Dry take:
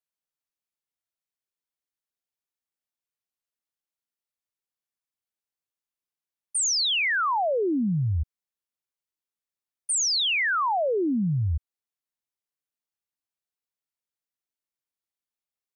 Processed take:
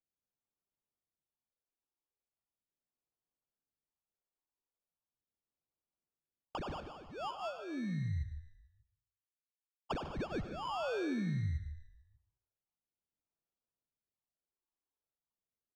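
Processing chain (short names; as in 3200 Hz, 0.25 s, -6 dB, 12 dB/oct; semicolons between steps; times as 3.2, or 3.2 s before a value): Wiener smoothing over 15 samples; 6.8–9.91 expander -18 dBFS; compressor 6:1, threshold -40 dBFS, peak gain reduction 15 dB; phaser stages 6, 0.39 Hz, lowest notch 150–3400 Hz; sample-rate reducer 2000 Hz, jitter 0%; air absorption 150 m; frequency-shifting echo 0.147 s, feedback 42%, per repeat -46 Hz, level -13.5 dB; reverb RT60 0.55 s, pre-delay 85 ms, DRR 11 dB; gain +3 dB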